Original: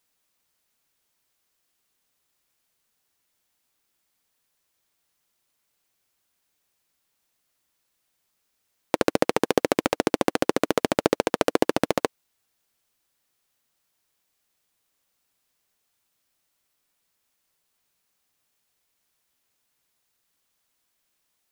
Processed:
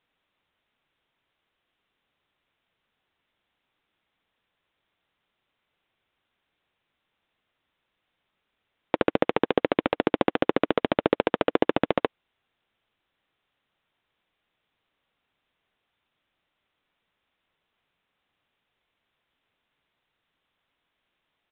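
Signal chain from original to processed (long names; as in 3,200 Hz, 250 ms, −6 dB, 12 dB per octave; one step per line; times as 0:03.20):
brickwall limiter −6.5 dBFS, peak gain reduction 5.5 dB
downsampling to 8,000 Hz
level +3 dB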